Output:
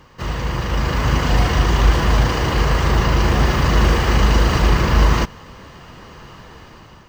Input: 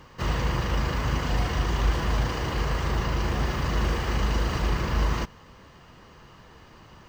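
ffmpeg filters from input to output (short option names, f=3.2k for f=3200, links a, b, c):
-af "dynaudnorm=f=350:g=5:m=9dB,volume=2dB"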